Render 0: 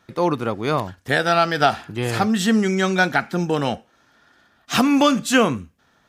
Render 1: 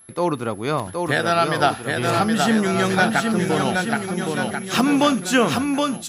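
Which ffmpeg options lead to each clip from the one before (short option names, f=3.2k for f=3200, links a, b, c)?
-filter_complex "[0:a]aeval=exprs='val(0)+0.00562*sin(2*PI*11000*n/s)':c=same,asplit=2[a][b];[b]aecho=0:1:770|1386|1879|2273|2588:0.631|0.398|0.251|0.158|0.1[c];[a][c]amix=inputs=2:normalize=0,volume=-1.5dB"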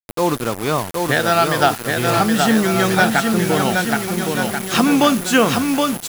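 -af "acrusher=bits=4:mix=0:aa=0.000001,volume=3dB"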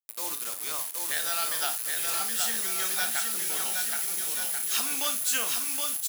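-af "aderivative,aecho=1:1:26|55:0.299|0.282,volume=-3dB"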